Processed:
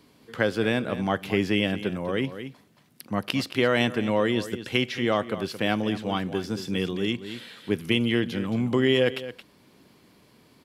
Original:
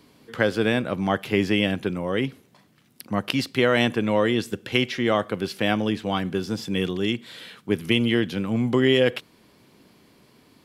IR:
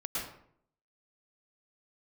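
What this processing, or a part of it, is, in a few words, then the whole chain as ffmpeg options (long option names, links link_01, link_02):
ducked delay: -filter_complex "[0:a]asplit=3[link_01][link_02][link_03];[link_02]adelay=222,volume=-5dB[link_04];[link_03]apad=whole_len=479367[link_05];[link_04][link_05]sidechaincompress=threshold=-27dB:ratio=5:attack=16:release=672[link_06];[link_01][link_06]amix=inputs=2:normalize=0,volume=-2.5dB"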